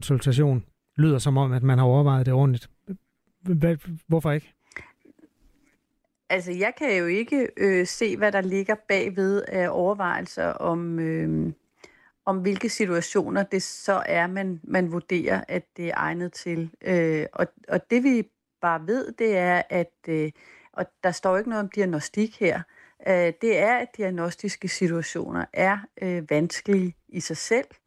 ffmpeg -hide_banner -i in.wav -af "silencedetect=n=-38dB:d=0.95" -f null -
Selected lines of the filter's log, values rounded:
silence_start: 4.83
silence_end: 6.30 | silence_duration: 1.47